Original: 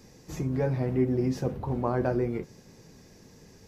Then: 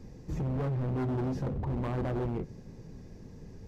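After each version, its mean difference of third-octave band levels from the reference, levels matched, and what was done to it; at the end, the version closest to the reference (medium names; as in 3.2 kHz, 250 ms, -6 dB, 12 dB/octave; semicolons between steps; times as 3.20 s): 4.5 dB: tilt EQ -3 dB/octave; in parallel at -1 dB: peak limiter -27 dBFS, peak gain reduction 17.5 dB; on the sum: hard clipper -21.5 dBFS, distortion -8 dB; trim -7.5 dB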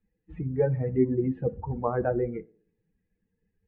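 11.0 dB: expander on every frequency bin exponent 2; inverse Chebyshev low-pass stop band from 4.9 kHz, stop band 50 dB; peaking EQ 460 Hz +8 dB 0.29 oct; on a send: tape echo 60 ms, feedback 58%, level -20 dB, low-pass 1.2 kHz; on the sum: trim +3 dB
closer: first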